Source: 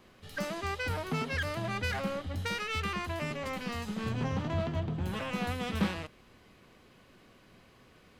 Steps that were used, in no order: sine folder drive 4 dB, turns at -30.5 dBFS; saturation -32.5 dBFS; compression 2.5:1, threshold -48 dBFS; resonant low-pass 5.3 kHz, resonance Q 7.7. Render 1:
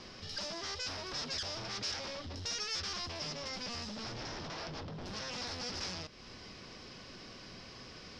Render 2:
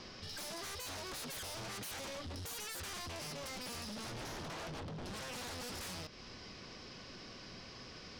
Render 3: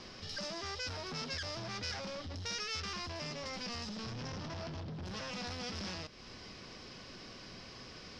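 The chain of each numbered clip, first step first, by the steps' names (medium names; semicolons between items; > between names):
sine folder > compression > saturation > resonant low-pass; resonant low-pass > sine folder > saturation > compression; saturation > sine folder > compression > resonant low-pass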